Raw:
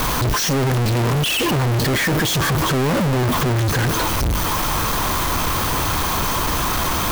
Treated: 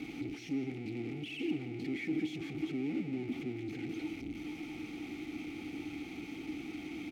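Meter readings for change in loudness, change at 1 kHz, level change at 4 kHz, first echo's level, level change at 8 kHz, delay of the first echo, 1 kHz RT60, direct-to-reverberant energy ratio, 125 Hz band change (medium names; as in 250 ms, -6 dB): -20.5 dB, -34.5 dB, -27.5 dB, -13.5 dB, under -35 dB, 172 ms, no reverb, no reverb, -27.5 dB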